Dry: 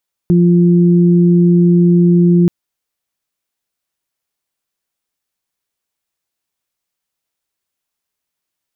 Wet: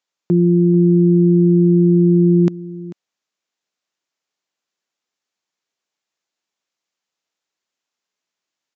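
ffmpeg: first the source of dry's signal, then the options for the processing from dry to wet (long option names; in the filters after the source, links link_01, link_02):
-f lavfi -i "aevalsrc='0.447*sin(2*PI*174*t)+0.2*sin(2*PI*348*t)':duration=2.18:sample_rate=44100"
-af "highpass=200,aecho=1:1:442:0.141,aresample=16000,aresample=44100"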